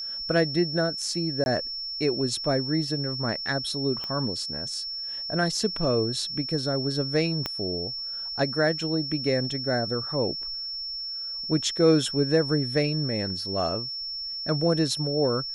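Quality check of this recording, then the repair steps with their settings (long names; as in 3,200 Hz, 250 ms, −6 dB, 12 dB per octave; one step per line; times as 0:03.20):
whistle 5,400 Hz −31 dBFS
0:01.44–0:01.46: drop-out 21 ms
0:04.04: click −21 dBFS
0:07.46: click −13 dBFS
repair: click removal
notch filter 5,400 Hz, Q 30
repair the gap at 0:01.44, 21 ms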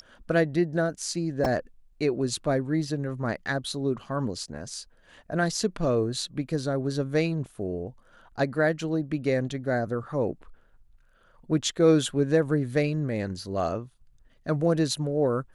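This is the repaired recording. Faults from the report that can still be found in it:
0:04.04: click
0:07.46: click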